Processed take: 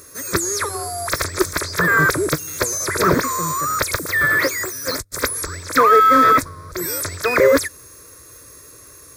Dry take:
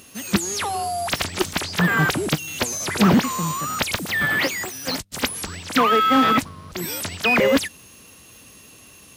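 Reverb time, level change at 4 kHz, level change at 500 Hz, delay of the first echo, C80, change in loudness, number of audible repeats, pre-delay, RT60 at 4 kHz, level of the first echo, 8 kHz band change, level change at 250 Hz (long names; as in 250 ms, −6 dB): no reverb audible, −2.5 dB, +5.5 dB, no echo audible, no reverb audible, +3.5 dB, no echo audible, no reverb audible, no reverb audible, no echo audible, +5.0 dB, −3.0 dB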